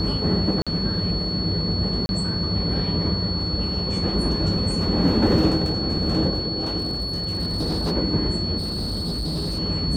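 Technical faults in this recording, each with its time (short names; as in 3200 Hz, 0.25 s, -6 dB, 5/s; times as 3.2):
tone 4400 Hz -27 dBFS
0.62–0.67 gap 46 ms
2.06–2.09 gap 31 ms
6.78–7.92 clipped -20 dBFS
8.57–9.59 clipped -23 dBFS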